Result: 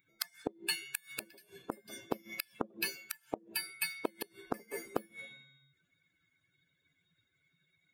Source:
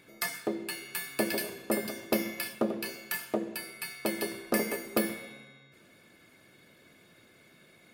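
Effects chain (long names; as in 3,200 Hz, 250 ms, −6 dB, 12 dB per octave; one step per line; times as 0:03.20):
spectral dynamics exaggerated over time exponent 2
gate with flip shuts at −28 dBFS, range −31 dB
level +9.5 dB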